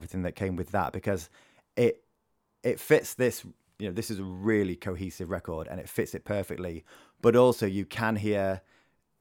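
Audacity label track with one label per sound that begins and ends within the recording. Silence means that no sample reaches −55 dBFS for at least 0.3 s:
2.640000	8.820000	sound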